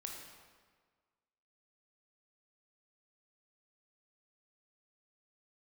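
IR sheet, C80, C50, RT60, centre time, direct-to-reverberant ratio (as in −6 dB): 4.0 dB, 2.0 dB, 1.6 s, 64 ms, 0.0 dB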